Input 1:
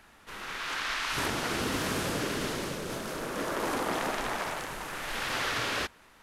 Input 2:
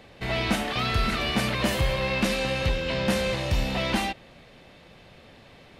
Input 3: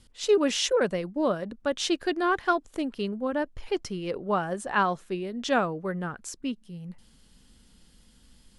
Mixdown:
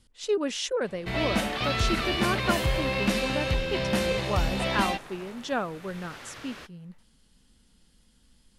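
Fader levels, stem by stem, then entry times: −14.0, −1.5, −4.5 decibels; 0.80, 0.85, 0.00 seconds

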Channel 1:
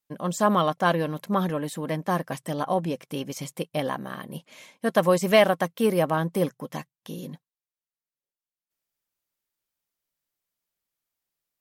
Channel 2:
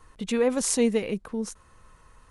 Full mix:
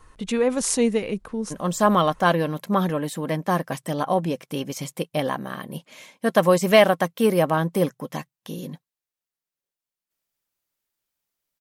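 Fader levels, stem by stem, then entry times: +3.0, +2.0 decibels; 1.40, 0.00 seconds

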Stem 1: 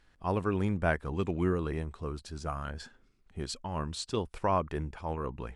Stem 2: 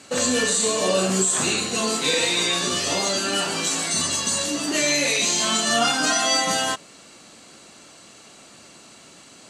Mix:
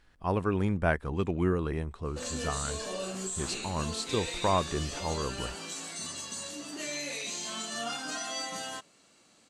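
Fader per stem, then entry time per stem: +1.5, −15.5 decibels; 0.00, 2.05 seconds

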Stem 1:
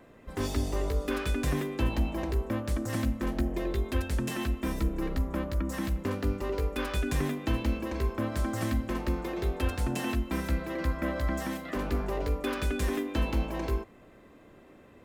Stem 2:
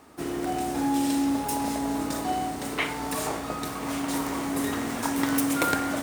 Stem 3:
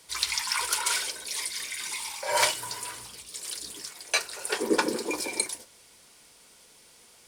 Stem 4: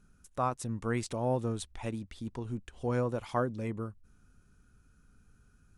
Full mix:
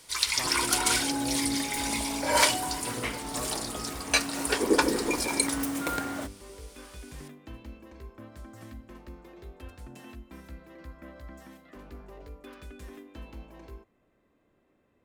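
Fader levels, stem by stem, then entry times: −15.5, −6.5, +1.5, −10.5 decibels; 0.00, 0.25, 0.00, 0.00 seconds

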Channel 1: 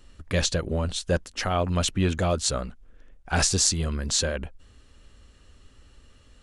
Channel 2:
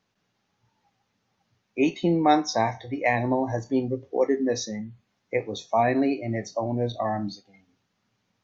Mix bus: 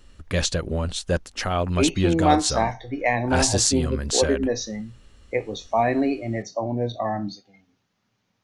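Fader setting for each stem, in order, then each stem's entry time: +1.0, +1.0 decibels; 0.00, 0.00 seconds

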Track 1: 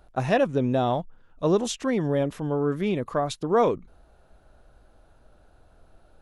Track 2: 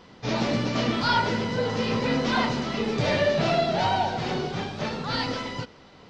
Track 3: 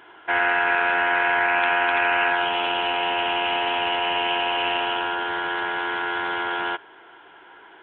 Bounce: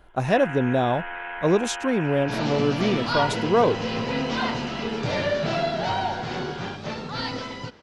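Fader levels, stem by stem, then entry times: +1.5, −2.0, −13.5 decibels; 0.00, 2.05, 0.00 seconds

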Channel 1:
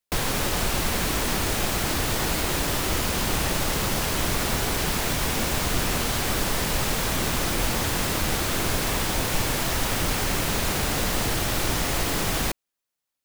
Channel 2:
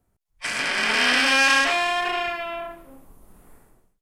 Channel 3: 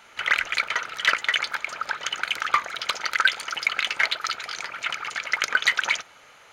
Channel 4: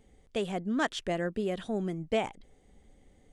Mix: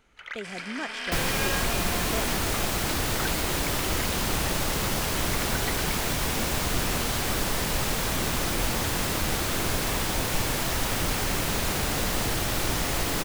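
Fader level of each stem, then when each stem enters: −2.0, −15.0, −16.5, −6.0 decibels; 1.00, 0.00, 0.00, 0.00 seconds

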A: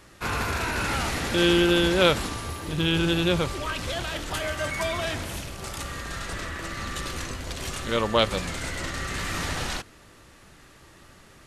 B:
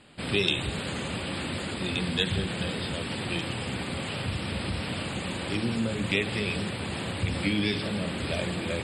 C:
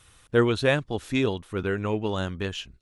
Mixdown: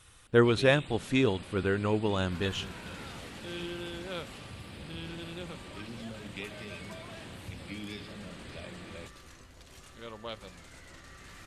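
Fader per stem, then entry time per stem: −19.5, −14.5, −1.5 decibels; 2.10, 0.25, 0.00 seconds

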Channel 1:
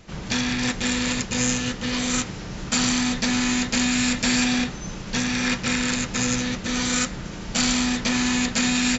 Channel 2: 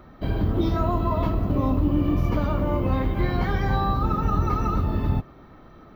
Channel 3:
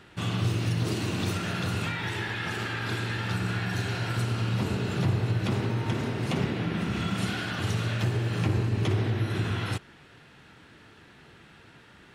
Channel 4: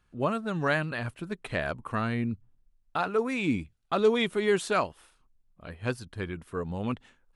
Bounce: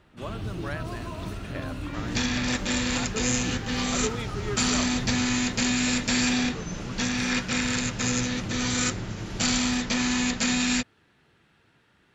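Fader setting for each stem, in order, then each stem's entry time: −3.0, −14.0, −10.5, −9.5 decibels; 1.85, 0.00, 0.00, 0.00 seconds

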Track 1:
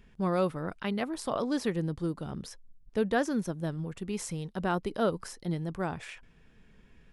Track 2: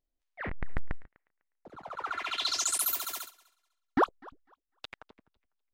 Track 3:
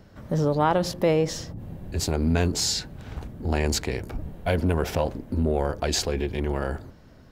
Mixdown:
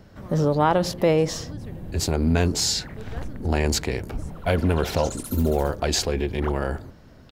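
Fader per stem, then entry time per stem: −14.5, −8.5, +2.0 decibels; 0.00, 2.45, 0.00 seconds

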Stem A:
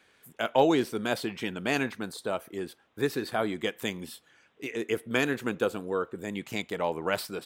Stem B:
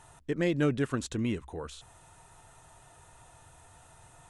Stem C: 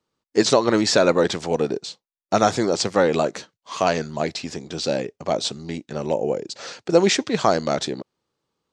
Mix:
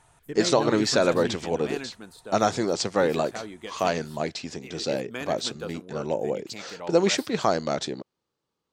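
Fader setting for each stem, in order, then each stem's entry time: −8.5, −4.5, −4.5 decibels; 0.00, 0.00, 0.00 seconds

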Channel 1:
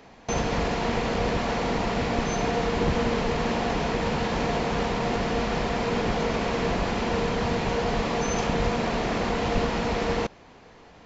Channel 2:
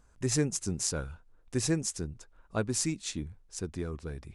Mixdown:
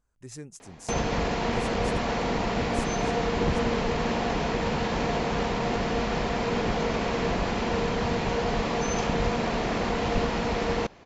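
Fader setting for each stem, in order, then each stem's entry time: −1.0, −13.5 decibels; 0.60, 0.00 seconds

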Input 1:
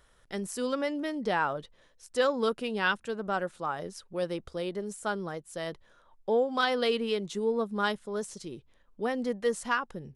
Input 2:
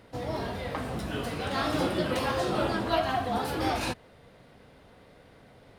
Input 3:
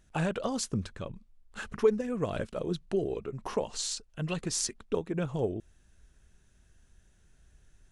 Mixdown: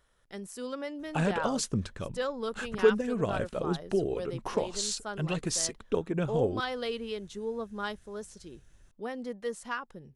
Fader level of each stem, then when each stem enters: −6.5 dB, muted, +1.5 dB; 0.00 s, muted, 1.00 s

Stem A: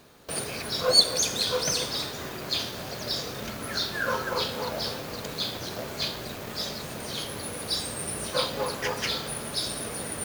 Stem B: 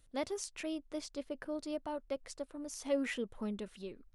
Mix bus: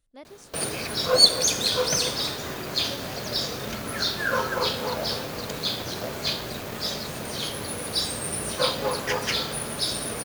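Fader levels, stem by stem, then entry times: +3.0, −8.5 decibels; 0.25, 0.00 seconds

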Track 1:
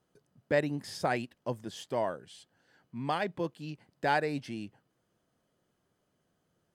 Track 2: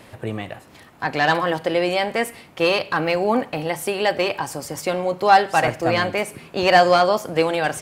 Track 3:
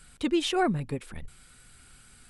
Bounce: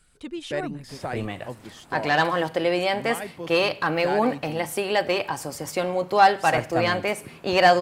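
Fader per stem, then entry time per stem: −2.0, −2.5, −8.5 decibels; 0.00, 0.90, 0.00 seconds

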